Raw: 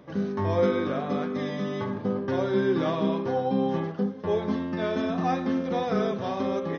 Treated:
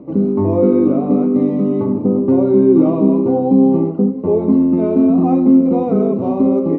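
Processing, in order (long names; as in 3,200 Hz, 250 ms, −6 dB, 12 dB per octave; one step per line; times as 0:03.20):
moving average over 26 samples
in parallel at −2 dB: brickwall limiter −22 dBFS, peak gain reduction 7.5 dB
on the sum: parametric band 290 Hz +13 dB 0.88 octaves
level +3 dB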